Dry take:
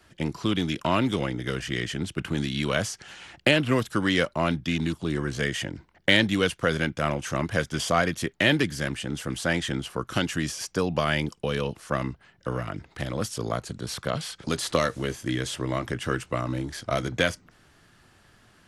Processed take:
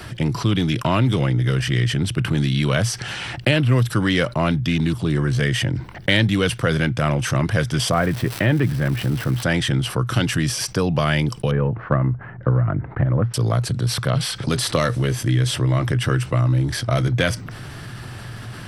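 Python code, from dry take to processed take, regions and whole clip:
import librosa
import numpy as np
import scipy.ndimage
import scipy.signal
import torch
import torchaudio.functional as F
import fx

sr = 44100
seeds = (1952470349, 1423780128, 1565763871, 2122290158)

y = fx.lowpass(x, sr, hz=1800.0, slope=12, at=(7.91, 9.42), fade=0.02)
y = fx.dmg_crackle(y, sr, seeds[0], per_s=530.0, level_db=-33.0, at=(7.91, 9.42), fade=0.02)
y = fx.chain(y, sr, fx.lowpass(hz=1700.0, slope=24),
    fx.transient(attack_db=6, sustain_db=-2), at=(11.51, 13.34))
y = fx.peak_eq(y, sr, hz=120.0, db=14.5, octaves=0.55)
y = fx.notch(y, sr, hz=6800.0, q=5.9)
y = fx.env_flatten(y, sr, amount_pct=50)
y = y * 10.0 ** (-1.0 / 20.0)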